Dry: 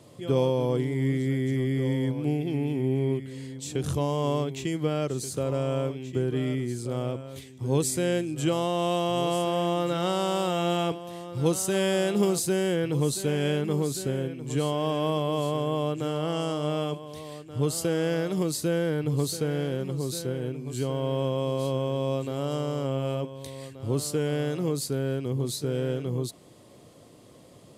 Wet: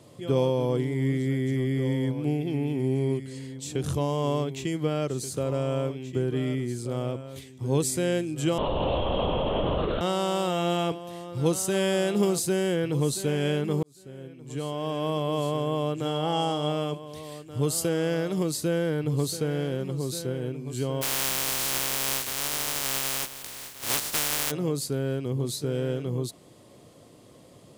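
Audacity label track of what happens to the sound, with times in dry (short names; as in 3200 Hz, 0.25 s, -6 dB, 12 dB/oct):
2.790000	3.390000	spectral gain 3900–11000 Hz +7 dB
8.580000	10.010000	LPC vocoder at 8 kHz whisper
13.830000	15.340000	fade in
16.050000	16.720000	small resonant body resonances 820/3300 Hz, height 13 dB
17.230000	17.890000	high shelf 7200 Hz +6 dB
21.010000	24.500000	spectral contrast lowered exponent 0.11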